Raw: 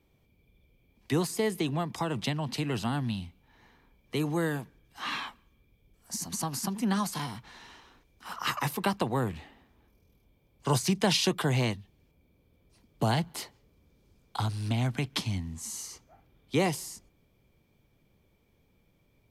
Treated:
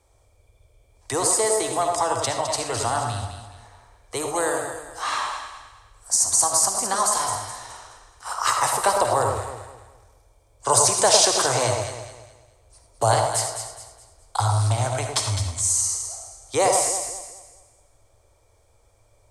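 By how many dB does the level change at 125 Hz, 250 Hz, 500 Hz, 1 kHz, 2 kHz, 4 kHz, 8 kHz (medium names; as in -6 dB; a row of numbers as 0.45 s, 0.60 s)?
+3.0 dB, -5.5 dB, +10.0 dB, +12.5 dB, +6.0 dB, +8.0 dB, +18.5 dB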